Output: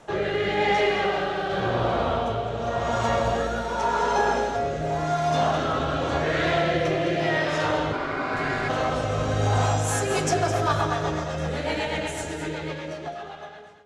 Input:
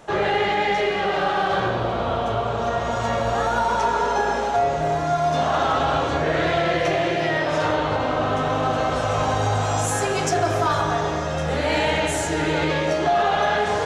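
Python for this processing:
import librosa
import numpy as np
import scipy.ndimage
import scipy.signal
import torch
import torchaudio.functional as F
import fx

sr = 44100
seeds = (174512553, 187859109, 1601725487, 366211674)

y = fx.fade_out_tail(x, sr, length_s=3.24)
y = fx.rotary_switch(y, sr, hz=0.9, then_hz=8.0, switch_at_s=9.48)
y = fx.ring_mod(y, sr, carrier_hz=890.0, at=(7.92, 8.68), fade=0.02)
y = y + 10.0 ** (-10.0 / 20.0) * np.pad(y, (int(211 * sr / 1000.0), 0))[:len(y)]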